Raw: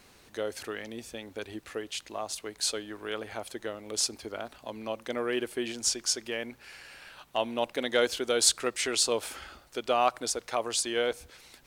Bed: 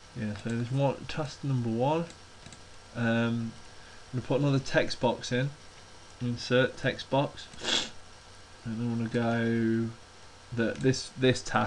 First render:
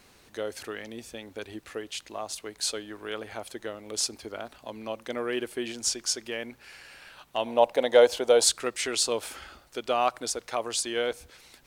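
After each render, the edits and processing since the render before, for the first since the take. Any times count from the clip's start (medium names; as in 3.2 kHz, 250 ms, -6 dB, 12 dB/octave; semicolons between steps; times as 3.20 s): 7.46–8.44 s: high-order bell 680 Hz +10 dB 1.3 oct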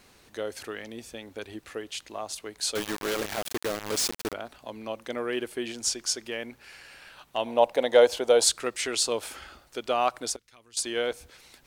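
2.75–4.33 s: companded quantiser 2-bit; 10.36–10.77 s: amplifier tone stack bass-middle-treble 6-0-2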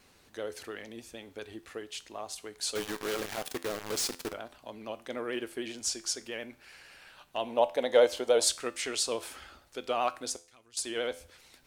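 vibrato 13 Hz 60 cents; feedback comb 85 Hz, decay 0.42 s, harmonics all, mix 50%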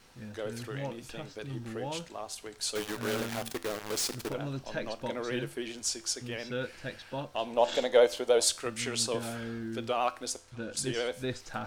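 add bed -10.5 dB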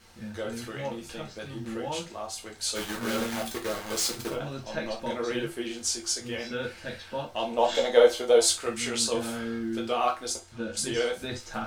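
gated-style reverb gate 90 ms falling, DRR -1 dB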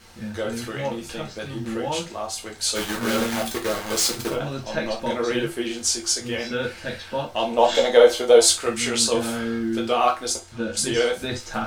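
trim +6.5 dB; peak limiter -3 dBFS, peak gain reduction 2.5 dB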